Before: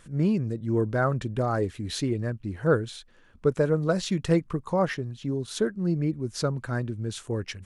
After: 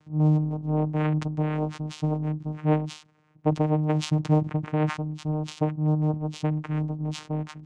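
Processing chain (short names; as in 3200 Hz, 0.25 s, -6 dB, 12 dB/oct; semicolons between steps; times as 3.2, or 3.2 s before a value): vocoder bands 4, saw 153 Hz; sustainer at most 130 dB/s; gain +1.5 dB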